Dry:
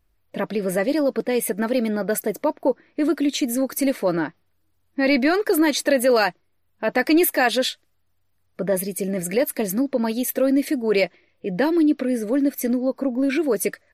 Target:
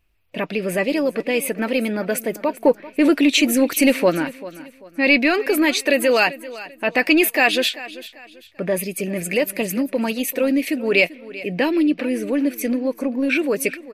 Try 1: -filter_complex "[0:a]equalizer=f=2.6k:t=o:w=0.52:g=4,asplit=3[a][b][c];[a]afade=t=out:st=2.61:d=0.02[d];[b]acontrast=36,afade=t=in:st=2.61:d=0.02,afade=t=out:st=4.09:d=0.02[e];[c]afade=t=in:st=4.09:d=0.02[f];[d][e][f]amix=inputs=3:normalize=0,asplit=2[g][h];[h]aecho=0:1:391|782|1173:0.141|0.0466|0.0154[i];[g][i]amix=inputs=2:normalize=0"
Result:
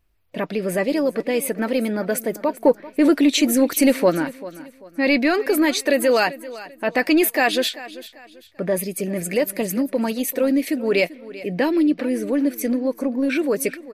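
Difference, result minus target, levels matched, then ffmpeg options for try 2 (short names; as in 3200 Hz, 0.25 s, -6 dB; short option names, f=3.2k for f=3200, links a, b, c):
2000 Hz band -3.5 dB
-filter_complex "[0:a]equalizer=f=2.6k:t=o:w=0.52:g=13,asplit=3[a][b][c];[a]afade=t=out:st=2.61:d=0.02[d];[b]acontrast=36,afade=t=in:st=2.61:d=0.02,afade=t=out:st=4.09:d=0.02[e];[c]afade=t=in:st=4.09:d=0.02[f];[d][e][f]amix=inputs=3:normalize=0,asplit=2[g][h];[h]aecho=0:1:391|782|1173:0.141|0.0466|0.0154[i];[g][i]amix=inputs=2:normalize=0"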